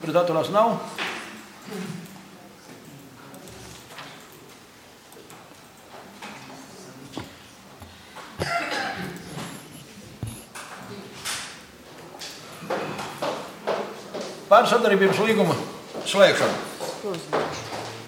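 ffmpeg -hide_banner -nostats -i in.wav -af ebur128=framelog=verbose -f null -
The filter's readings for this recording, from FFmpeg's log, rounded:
Integrated loudness:
  I:         -24.1 LUFS
  Threshold: -36.9 LUFS
Loudness range:
  LRA:        22.1 LU
  Threshold: -47.4 LUFS
  LRA low:   -42.8 LUFS
  LRA high:  -20.7 LUFS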